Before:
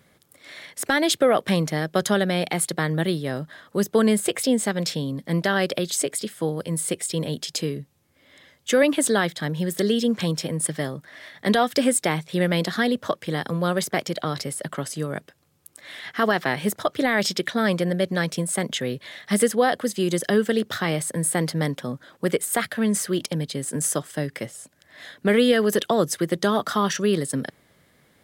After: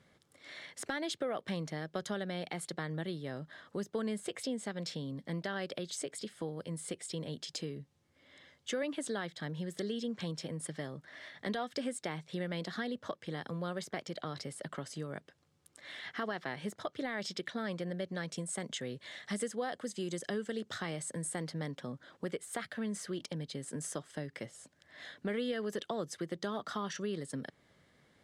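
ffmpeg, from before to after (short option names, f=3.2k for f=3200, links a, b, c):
-filter_complex "[0:a]asettb=1/sr,asplit=3[a][b][c];[a]atrim=end=18.314[d];[b]atrim=start=18.31:end=21.42,asetpts=PTS-STARTPTS,afade=t=in:d=0.004:c=qsin,afade=t=out:st=3.106:d=0.004:c=qsin,equalizer=f=7.8k:w=1.5:g=7[e];[c]atrim=start=21.416[f];[d][e]acrossfade=d=0.004:c1=hsin:c2=qsin[g];[g][f]acrossfade=d=0.004:c1=qsin:c2=hsin,lowpass=7.2k,bandreject=f=2.5k:w=24,acompressor=threshold=-34dB:ratio=2,volume=-7dB"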